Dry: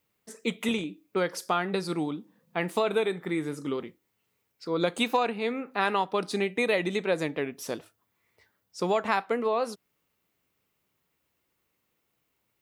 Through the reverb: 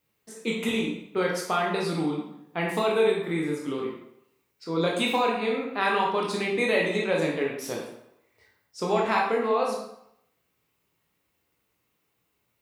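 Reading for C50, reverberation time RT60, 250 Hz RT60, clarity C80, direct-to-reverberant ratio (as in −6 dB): 2.5 dB, 0.75 s, 0.70 s, 6.5 dB, −2.5 dB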